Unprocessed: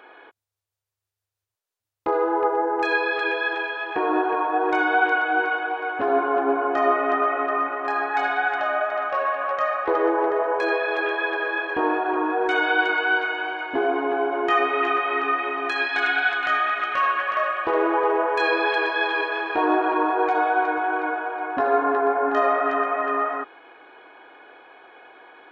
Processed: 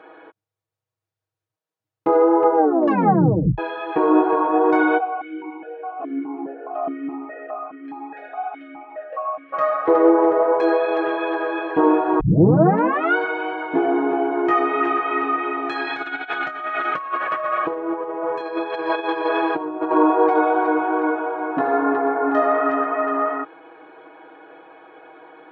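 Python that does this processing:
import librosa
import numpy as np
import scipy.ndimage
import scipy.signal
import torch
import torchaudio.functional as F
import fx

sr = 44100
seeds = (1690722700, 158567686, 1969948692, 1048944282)

y = fx.vowel_held(x, sr, hz=4.8, at=(4.97, 9.52), fade=0.02)
y = fx.over_compress(y, sr, threshold_db=-26.0, ratio=-0.5, at=(15.87, 19.91))
y = fx.edit(y, sr, fx.tape_stop(start_s=2.56, length_s=1.02),
    fx.tape_start(start_s=12.2, length_s=0.96), tone=tone)
y = scipy.signal.sosfilt(scipy.signal.butter(2, 150.0, 'highpass', fs=sr, output='sos'), y)
y = fx.tilt_eq(y, sr, slope=-3.5)
y = y + 0.8 * np.pad(y, (int(6.3 * sr / 1000.0), 0))[:len(y)]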